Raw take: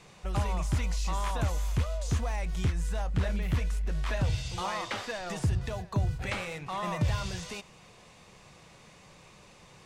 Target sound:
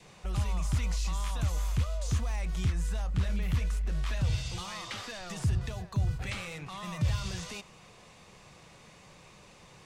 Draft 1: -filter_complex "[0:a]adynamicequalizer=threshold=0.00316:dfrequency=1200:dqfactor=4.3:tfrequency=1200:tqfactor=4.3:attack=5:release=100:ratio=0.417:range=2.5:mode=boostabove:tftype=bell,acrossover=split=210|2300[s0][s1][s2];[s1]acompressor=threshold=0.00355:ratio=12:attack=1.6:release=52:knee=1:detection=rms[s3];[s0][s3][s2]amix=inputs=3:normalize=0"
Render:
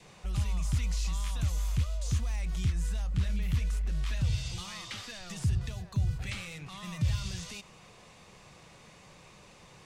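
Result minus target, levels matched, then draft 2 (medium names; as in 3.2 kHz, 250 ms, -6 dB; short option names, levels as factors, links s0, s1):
compression: peak gain reduction +7.5 dB
-filter_complex "[0:a]adynamicequalizer=threshold=0.00316:dfrequency=1200:dqfactor=4.3:tfrequency=1200:tqfactor=4.3:attack=5:release=100:ratio=0.417:range=2.5:mode=boostabove:tftype=bell,acrossover=split=210|2300[s0][s1][s2];[s1]acompressor=threshold=0.00891:ratio=12:attack=1.6:release=52:knee=1:detection=rms[s3];[s0][s3][s2]amix=inputs=3:normalize=0"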